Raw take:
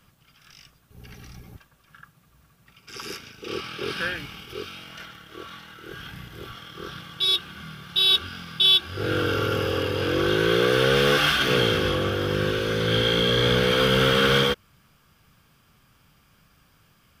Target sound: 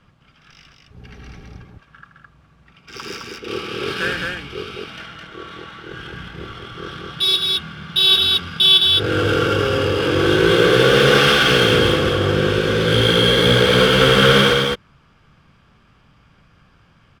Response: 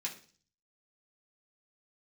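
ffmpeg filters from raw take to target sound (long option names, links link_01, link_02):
-af "adynamicsmooth=sensitivity=7.5:basefreq=3800,aecho=1:1:78.72|212.8:0.316|0.708,volume=5dB"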